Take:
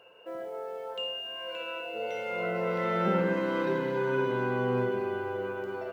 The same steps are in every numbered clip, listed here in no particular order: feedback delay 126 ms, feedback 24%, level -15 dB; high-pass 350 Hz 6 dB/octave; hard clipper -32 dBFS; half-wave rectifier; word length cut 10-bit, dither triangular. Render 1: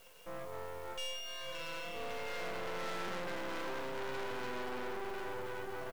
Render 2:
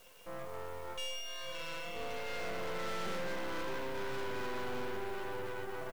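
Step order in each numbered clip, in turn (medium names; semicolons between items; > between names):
word length cut > feedback delay > hard clipper > high-pass > half-wave rectifier; high-pass > hard clipper > word length cut > half-wave rectifier > feedback delay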